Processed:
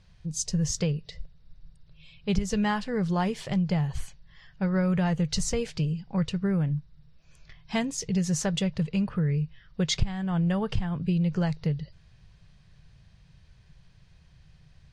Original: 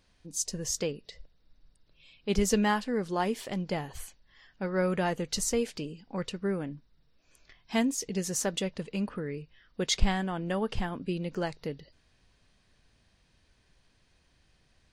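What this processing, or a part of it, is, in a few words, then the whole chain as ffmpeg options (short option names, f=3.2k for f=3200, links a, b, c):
jukebox: -af "lowpass=7.2k,lowshelf=f=200:t=q:w=3:g=8.5,acompressor=threshold=-25dB:ratio=5,volume=3dB"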